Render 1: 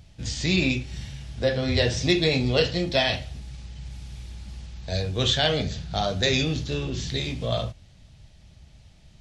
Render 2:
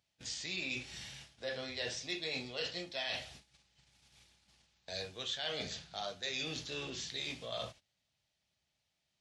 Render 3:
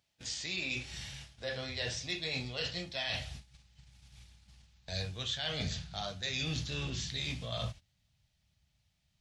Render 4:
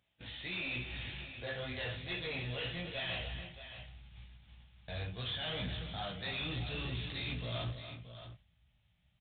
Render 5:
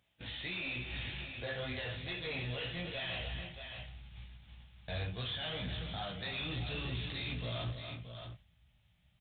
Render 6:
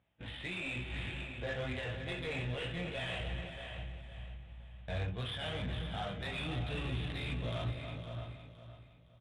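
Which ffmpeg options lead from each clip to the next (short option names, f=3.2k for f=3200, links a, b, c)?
-af "highpass=f=920:p=1,agate=range=-18dB:threshold=-50dB:ratio=16:detection=peak,areverse,acompressor=threshold=-36dB:ratio=4,areverse,volume=-2dB"
-af "asubboost=boost=7.5:cutoff=140,volume=2.5dB"
-af "flanger=delay=16:depth=2.2:speed=2.3,aresample=8000,asoftclip=type=tanh:threshold=-39.5dB,aresample=44100,aecho=1:1:287|625:0.299|0.266,volume=5dB"
-af "alimiter=level_in=10dB:limit=-24dB:level=0:latency=1:release=290,volume=-10dB,volume=3dB"
-af "adynamicsmooth=sensitivity=6:basefreq=2.1k,aecho=1:1:513|1026|1539|2052:0.316|0.101|0.0324|0.0104,volume=2dB"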